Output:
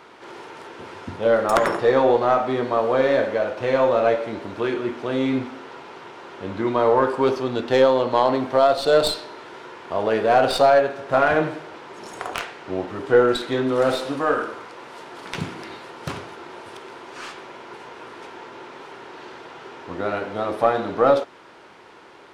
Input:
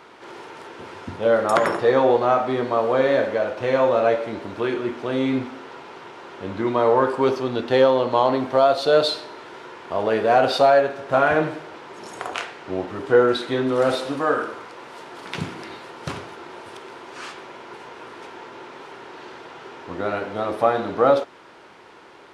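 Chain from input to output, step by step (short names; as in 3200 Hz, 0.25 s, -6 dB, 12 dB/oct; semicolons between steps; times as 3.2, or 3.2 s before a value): tracing distortion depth 0.085 ms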